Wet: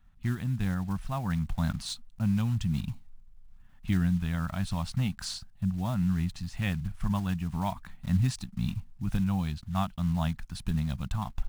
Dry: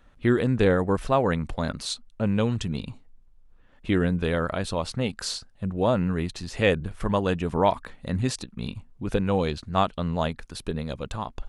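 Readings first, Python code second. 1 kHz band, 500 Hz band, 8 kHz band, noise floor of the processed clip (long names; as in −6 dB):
−10.0 dB, −20.5 dB, −5.5 dB, −53 dBFS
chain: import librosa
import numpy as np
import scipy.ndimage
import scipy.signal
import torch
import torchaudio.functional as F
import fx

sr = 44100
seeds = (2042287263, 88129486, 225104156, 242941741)

y = fx.block_float(x, sr, bits=5)
y = fx.rider(y, sr, range_db=4, speed_s=0.5)
y = fx.curve_eq(y, sr, hz=(190.0, 480.0, 720.0), db=(0, -29, -9))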